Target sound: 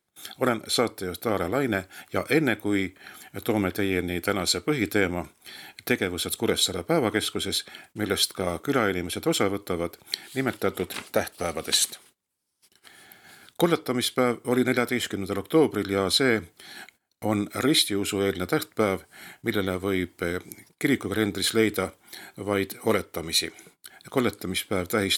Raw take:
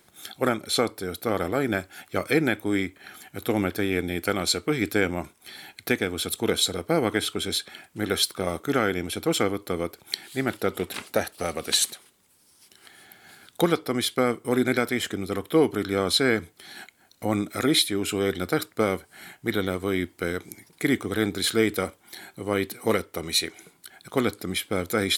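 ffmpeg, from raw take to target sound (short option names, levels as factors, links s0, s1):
-af "agate=range=0.1:threshold=0.00224:ratio=16:detection=peak"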